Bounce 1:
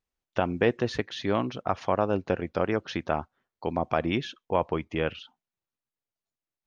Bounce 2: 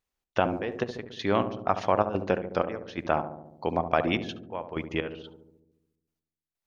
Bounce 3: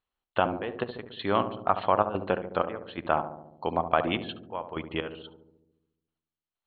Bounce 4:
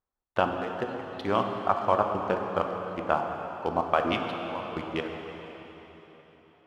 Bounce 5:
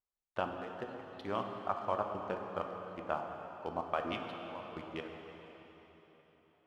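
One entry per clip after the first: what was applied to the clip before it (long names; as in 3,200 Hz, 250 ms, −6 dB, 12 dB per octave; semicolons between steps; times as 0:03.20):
low-shelf EQ 340 Hz −4.5 dB; gate pattern "xx.xx.x...xx..x" 126 BPM −12 dB; feedback echo with a low-pass in the loop 71 ms, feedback 72%, low-pass 830 Hz, level −8 dB; level +3 dB
Chebyshev low-pass with heavy ripple 4,300 Hz, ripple 6 dB; level +3 dB
adaptive Wiener filter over 15 samples; reverb reduction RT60 2 s; on a send at −2.5 dB: convolution reverb RT60 4.2 s, pre-delay 3 ms
tuned comb filter 610 Hz, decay 0.39 s, mix 60%; level −3 dB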